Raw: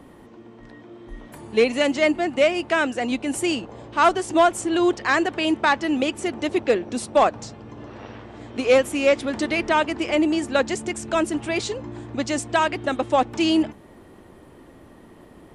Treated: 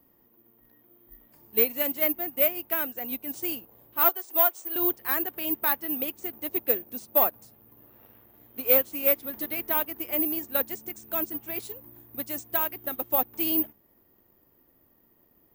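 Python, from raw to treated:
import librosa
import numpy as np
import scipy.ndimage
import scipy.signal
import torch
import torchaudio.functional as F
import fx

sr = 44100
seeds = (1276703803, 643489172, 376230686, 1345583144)

y = (np.kron(x[::3], np.eye(3)[0]) * 3)[:len(x)]
y = fx.highpass(y, sr, hz=520.0, slope=12, at=(4.09, 4.76))
y = fx.upward_expand(y, sr, threshold_db=-32.0, expansion=1.5)
y = F.gain(torch.from_numpy(y), -8.5).numpy()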